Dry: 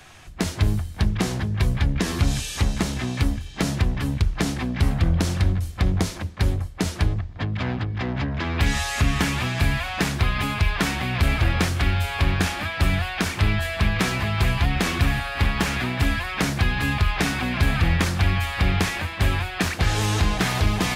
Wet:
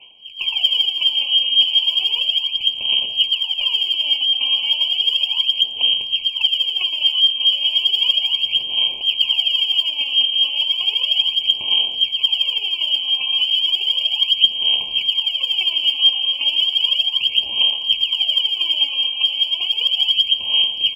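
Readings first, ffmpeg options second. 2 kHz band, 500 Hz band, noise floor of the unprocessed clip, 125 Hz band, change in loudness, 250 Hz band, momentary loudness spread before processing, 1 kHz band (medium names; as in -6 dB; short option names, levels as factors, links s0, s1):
-3.0 dB, under -15 dB, -36 dBFS, under -35 dB, +8.0 dB, under -25 dB, 4 LU, under -10 dB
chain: -af "aecho=1:1:115|230|345|460|575|690:0.398|0.203|0.104|0.0528|0.0269|0.0137,acontrast=69,lowshelf=f=560:t=q:w=1.5:g=10,acrusher=samples=23:mix=1:aa=0.000001:lfo=1:lforange=23:lforate=0.28,equalizer=f=120:t=o:w=0.57:g=13.5,aeval=exprs='abs(val(0))':c=same,bandreject=f=50:t=h:w=6,bandreject=f=100:t=h:w=6,acompressor=threshold=0.631:ratio=5,lowpass=f=2700:t=q:w=0.5098,lowpass=f=2700:t=q:w=0.6013,lowpass=f=2700:t=q:w=0.9,lowpass=f=2700:t=q:w=2.563,afreqshift=-3200,aphaser=in_gain=1:out_gain=1:delay=3.8:decay=0.76:speed=0.34:type=sinusoidal,afftfilt=real='re*eq(mod(floor(b*sr/1024/1100),2),0)':imag='im*eq(mod(floor(b*sr/1024/1100),2),0)':win_size=1024:overlap=0.75,volume=0.168"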